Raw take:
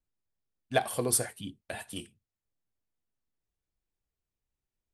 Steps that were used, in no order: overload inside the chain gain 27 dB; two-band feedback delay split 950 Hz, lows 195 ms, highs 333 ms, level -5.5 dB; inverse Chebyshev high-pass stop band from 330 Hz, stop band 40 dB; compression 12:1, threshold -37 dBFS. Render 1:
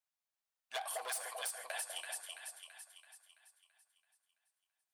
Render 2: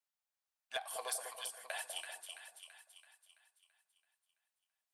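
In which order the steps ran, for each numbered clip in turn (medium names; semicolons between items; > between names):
two-band feedback delay > overload inside the chain > inverse Chebyshev high-pass > compression; inverse Chebyshev high-pass > compression > overload inside the chain > two-band feedback delay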